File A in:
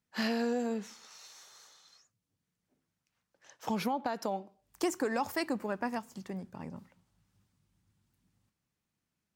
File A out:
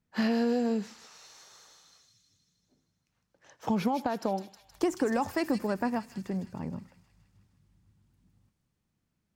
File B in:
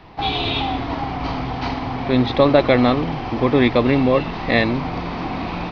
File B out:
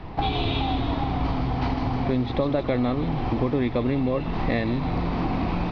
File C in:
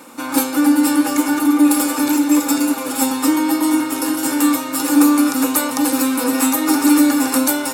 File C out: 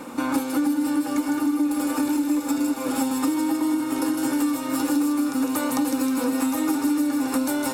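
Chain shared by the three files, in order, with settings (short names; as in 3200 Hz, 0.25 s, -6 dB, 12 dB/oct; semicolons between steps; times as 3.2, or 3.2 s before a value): tilt -2 dB/oct; compressor 6:1, threshold -24 dBFS; thin delay 0.157 s, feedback 63%, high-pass 3500 Hz, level -3.5 dB; gain +2.5 dB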